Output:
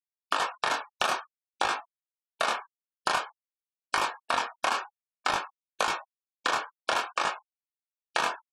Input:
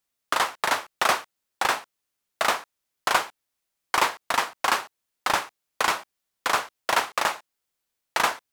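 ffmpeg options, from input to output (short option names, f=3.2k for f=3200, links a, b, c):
-af "adynamicequalizer=threshold=0.00562:dfrequency=600:dqfactor=5.1:tfrequency=600:tqfactor=5.1:attack=5:release=100:ratio=0.375:range=2.5:mode=cutabove:tftype=bell,afftfilt=real='re*gte(hypot(re,im),0.0251)':imag='im*gte(hypot(re,im),0.0251)':win_size=1024:overlap=0.75,acompressor=threshold=-28dB:ratio=10,flanger=delay=19:depth=7.6:speed=0.52,asuperstop=centerf=2000:order=12:qfactor=7.6,volume=8dB"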